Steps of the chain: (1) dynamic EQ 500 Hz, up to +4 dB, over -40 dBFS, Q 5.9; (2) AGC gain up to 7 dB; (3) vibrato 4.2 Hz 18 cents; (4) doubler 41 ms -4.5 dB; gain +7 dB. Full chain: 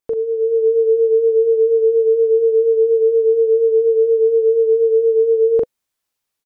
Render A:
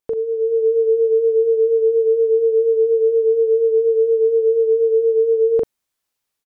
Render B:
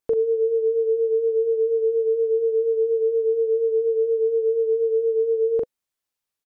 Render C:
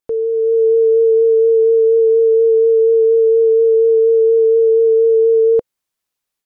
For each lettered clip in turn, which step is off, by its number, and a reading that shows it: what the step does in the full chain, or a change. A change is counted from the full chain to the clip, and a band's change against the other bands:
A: 1, loudness change -1.5 LU; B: 2, momentary loudness spread change -2 LU; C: 4, crest factor change -2.5 dB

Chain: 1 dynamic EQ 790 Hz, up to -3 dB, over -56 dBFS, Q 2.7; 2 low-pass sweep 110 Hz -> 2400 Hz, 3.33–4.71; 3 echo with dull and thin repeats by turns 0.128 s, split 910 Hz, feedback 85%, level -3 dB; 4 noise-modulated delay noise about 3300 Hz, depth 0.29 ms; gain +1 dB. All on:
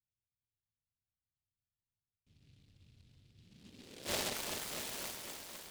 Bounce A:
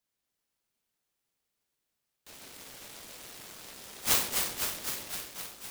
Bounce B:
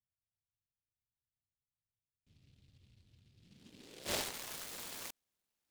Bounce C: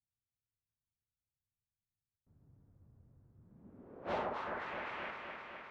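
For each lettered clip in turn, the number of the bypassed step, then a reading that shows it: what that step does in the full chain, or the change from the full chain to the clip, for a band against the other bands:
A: 2, momentary loudness spread change +1 LU; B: 3, loudness change -2.0 LU; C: 4, 4 kHz band -15.0 dB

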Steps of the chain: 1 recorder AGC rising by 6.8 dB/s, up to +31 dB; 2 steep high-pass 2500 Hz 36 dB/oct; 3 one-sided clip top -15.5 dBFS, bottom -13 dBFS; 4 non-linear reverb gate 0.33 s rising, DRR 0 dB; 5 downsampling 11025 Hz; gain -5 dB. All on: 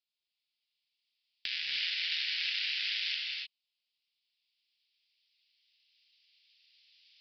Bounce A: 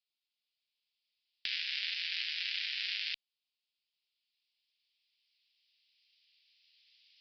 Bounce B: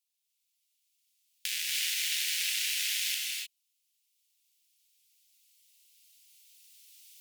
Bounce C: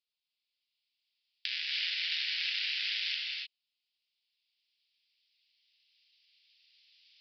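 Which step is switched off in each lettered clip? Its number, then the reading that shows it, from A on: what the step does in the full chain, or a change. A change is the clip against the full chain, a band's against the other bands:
4, momentary loudness spread change -4 LU; 5, loudness change +2.5 LU; 3, distortion -23 dB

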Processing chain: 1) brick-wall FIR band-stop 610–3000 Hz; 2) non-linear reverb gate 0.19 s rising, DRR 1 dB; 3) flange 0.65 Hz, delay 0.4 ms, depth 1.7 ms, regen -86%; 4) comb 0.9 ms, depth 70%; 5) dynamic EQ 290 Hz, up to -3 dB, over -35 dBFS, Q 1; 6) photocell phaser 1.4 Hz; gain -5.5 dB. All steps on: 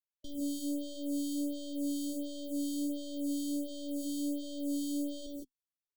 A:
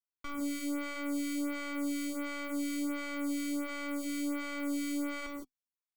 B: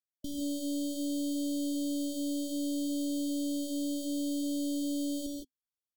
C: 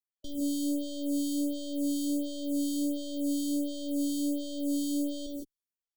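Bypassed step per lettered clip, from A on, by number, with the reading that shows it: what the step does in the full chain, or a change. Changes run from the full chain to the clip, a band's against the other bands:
1, momentary loudness spread change -1 LU; 6, momentary loudness spread change -2 LU; 3, loudness change +4.5 LU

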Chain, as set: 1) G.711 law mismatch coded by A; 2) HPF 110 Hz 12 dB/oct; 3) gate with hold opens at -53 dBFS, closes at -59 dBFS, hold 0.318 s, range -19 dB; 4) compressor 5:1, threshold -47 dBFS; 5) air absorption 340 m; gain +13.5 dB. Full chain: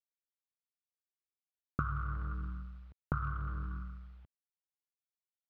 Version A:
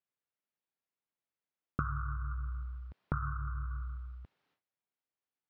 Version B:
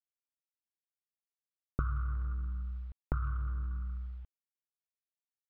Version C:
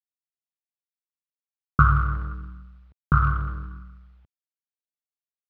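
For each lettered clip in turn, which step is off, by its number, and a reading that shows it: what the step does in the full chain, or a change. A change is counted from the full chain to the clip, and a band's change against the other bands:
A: 1, distortion -22 dB; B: 2, 125 Hz band +6.5 dB; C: 4, mean gain reduction 7.5 dB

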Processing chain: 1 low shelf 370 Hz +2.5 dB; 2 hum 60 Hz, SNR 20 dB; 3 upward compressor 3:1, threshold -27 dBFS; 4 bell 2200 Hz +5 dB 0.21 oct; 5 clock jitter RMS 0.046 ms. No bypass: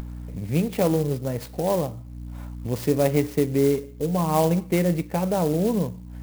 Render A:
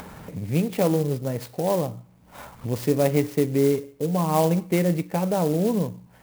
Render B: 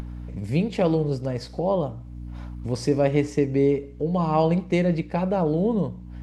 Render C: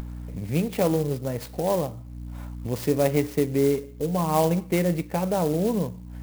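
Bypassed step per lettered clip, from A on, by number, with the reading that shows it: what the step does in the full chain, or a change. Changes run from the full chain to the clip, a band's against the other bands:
2, momentary loudness spread change -3 LU; 5, 8 kHz band -9.0 dB; 1, loudness change -1.5 LU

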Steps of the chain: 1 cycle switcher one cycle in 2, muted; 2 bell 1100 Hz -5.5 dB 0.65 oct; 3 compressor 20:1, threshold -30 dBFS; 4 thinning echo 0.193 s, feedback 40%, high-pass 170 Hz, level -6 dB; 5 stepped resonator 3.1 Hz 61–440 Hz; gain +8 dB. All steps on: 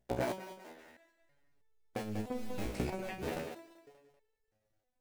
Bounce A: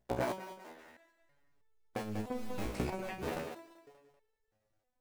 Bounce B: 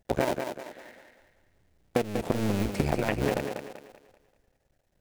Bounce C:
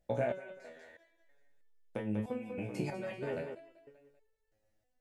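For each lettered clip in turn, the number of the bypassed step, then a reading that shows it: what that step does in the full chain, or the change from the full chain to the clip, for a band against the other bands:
2, 1 kHz band +2.0 dB; 5, crest factor change +2.0 dB; 1, 8 kHz band -9.5 dB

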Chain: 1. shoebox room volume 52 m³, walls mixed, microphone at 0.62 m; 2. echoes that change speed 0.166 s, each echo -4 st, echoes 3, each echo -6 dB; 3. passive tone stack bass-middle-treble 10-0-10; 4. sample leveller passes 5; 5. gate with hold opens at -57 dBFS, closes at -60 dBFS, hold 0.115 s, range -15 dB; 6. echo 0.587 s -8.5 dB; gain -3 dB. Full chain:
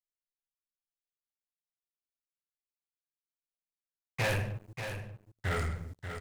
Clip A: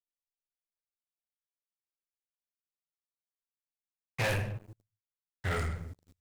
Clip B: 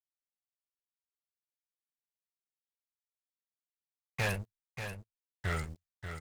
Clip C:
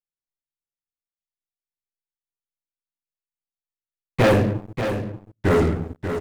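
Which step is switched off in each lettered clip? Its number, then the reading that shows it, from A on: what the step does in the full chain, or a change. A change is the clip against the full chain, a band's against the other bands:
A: 6, momentary loudness spread change +2 LU; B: 1, crest factor change +2.5 dB; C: 3, 250 Hz band +12.0 dB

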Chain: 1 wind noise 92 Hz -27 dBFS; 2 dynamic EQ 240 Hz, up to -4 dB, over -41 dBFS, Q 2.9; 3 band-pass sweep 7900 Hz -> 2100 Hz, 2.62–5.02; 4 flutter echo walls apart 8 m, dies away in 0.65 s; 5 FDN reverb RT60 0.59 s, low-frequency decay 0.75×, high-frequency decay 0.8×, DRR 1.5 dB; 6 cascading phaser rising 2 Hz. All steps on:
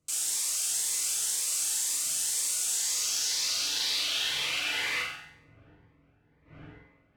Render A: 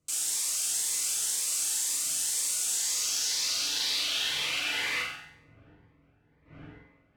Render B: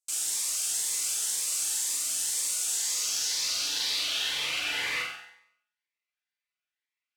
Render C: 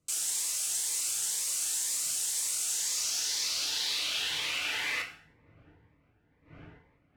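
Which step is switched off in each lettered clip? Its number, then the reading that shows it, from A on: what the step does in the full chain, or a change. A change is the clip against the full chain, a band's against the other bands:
2, 250 Hz band +1.5 dB; 1, 250 Hz band -1.5 dB; 4, loudness change -2.0 LU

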